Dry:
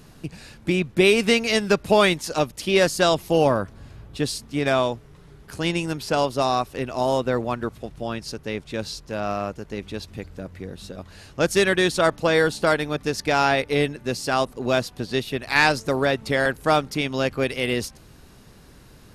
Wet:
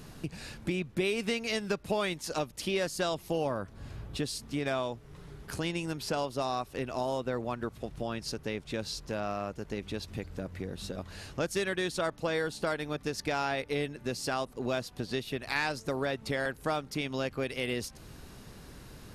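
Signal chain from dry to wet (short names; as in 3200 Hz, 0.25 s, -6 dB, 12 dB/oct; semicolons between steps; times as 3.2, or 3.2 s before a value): compressor 2.5:1, threshold -34 dBFS, peak gain reduction 14.5 dB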